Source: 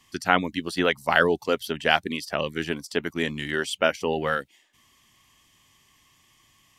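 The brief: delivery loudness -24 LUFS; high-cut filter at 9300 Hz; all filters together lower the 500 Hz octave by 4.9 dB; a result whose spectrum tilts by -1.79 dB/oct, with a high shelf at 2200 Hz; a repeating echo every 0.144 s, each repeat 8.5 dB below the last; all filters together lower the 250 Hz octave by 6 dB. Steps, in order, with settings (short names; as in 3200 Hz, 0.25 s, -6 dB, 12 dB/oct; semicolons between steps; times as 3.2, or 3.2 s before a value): LPF 9300 Hz; bell 250 Hz -6.5 dB; bell 500 Hz -4 dB; high shelf 2200 Hz -4.5 dB; feedback echo 0.144 s, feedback 38%, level -8.5 dB; gain +3.5 dB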